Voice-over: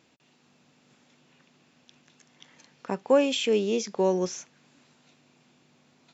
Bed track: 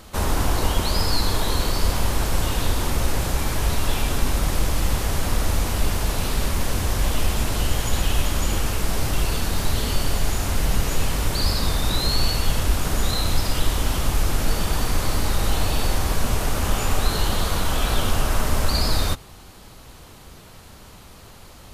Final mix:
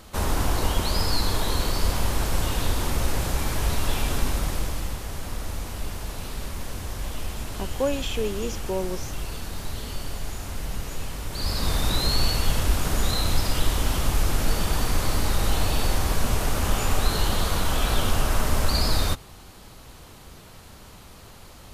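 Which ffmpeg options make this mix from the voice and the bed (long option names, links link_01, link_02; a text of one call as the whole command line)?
ffmpeg -i stem1.wav -i stem2.wav -filter_complex "[0:a]adelay=4700,volume=-4.5dB[link_01];[1:a]volume=6dB,afade=type=out:start_time=4.18:duration=0.8:silence=0.421697,afade=type=in:start_time=11.29:duration=0.46:silence=0.375837[link_02];[link_01][link_02]amix=inputs=2:normalize=0" out.wav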